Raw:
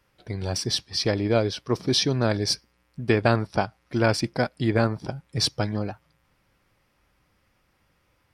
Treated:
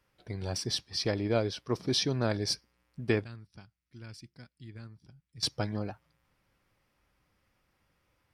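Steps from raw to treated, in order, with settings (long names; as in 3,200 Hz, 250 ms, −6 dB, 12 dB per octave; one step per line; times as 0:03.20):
0:03.24–0:05.43: guitar amp tone stack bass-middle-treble 6-0-2
level −6.5 dB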